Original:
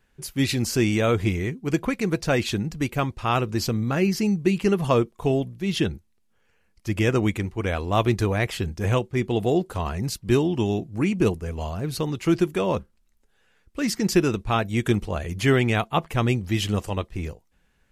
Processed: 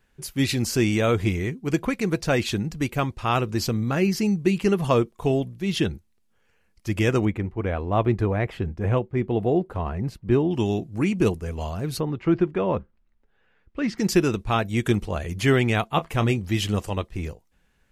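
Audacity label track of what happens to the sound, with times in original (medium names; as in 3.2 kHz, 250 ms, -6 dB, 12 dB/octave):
7.250000	10.510000	FFT filter 700 Hz 0 dB, 2.1 kHz -5 dB, 6.2 kHz -19 dB
11.990000	13.970000	low-pass 1.7 kHz -> 2.9 kHz
15.880000	16.380000	doubling 27 ms -13 dB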